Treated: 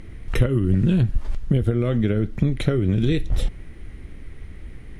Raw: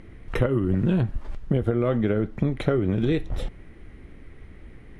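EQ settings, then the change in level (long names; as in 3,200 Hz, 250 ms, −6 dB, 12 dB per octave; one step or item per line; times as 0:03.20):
dynamic equaliser 890 Hz, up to −8 dB, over −41 dBFS, Q 1
low-shelf EQ 160 Hz +8.5 dB
high-shelf EQ 2,900 Hz +10.5 dB
0.0 dB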